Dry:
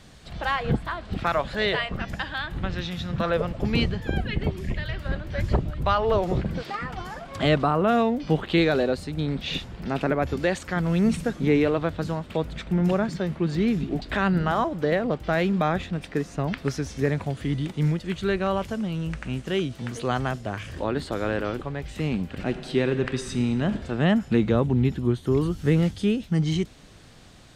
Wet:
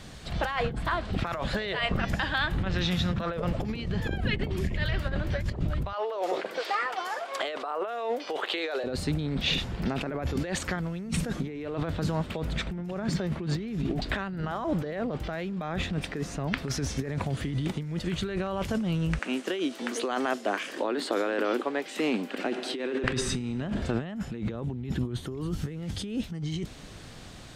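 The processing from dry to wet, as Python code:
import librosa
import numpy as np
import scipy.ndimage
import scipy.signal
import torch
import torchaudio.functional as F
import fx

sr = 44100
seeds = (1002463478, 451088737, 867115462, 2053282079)

y = fx.highpass(x, sr, hz=430.0, slope=24, at=(5.93, 8.84))
y = fx.steep_highpass(y, sr, hz=250.0, slope=36, at=(19.19, 23.04))
y = fx.over_compress(y, sr, threshold_db=-30.0, ratio=-1.0)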